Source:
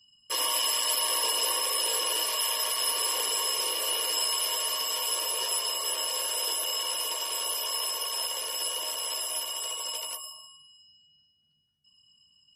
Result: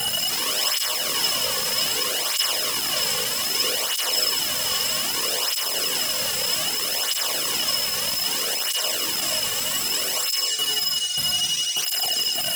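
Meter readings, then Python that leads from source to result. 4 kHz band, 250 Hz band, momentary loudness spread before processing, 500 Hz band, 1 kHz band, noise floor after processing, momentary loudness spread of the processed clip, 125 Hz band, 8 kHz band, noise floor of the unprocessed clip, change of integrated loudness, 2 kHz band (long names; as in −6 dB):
+8.0 dB, +14.0 dB, 6 LU, +5.5 dB, +2.5 dB, −26 dBFS, 1 LU, can't be measured, +5.5 dB, −66 dBFS, +6.0 dB, +9.5 dB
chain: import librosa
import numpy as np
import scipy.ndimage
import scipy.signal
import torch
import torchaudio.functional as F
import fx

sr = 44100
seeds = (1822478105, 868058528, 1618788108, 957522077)

p1 = x + 0.5 * 10.0 ** (-27.0 / 20.0) * np.diff(np.sign(x), prepend=np.sign(x[:1]))
p2 = scipy.signal.sosfilt(scipy.signal.butter(4, 6900.0, 'lowpass', fs=sr, output='sos'), p1)
p3 = fx.leveller(p2, sr, passes=2)
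p4 = scipy.signal.sosfilt(scipy.signal.butter(4, 360.0, 'highpass', fs=sr, output='sos'), p3)
p5 = fx.tremolo_shape(p4, sr, shape='saw_down', hz=1.7, depth_pct=65)
p6 = fx.leveller(p5, sr, passes=2)
p7 = fx.peak_eq(p6, sr, hz=900.0, db=-12.5, octaves=0.35)
p8 = fx.doubler(p7, sr, ms=16.0, db=-9)
p9 = fx.fold_sine(p8, sr, drive_db=17, ceiling_db=-12.5)
p10 = p8 + F.gain(torch.from_numpy(p9), -8.0).numpy()
y = fx.flanger_cancel(p10, sr, hz=0.63, depth_ms=3.2)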